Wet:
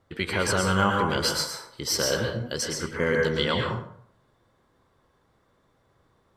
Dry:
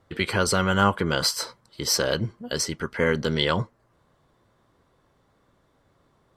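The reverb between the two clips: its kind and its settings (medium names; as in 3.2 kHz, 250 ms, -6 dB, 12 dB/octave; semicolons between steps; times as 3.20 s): plate-style reverb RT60 0.62 s, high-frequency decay 0.65×, pre-delay 100 ms, DRR 0.5 dB; trim -3.5 dB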